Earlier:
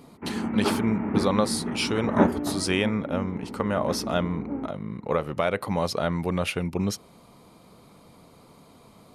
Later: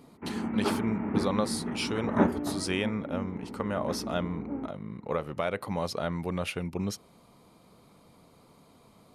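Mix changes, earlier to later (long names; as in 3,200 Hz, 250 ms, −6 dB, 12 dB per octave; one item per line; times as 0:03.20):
speech −5.5 dB
background −3.5 dB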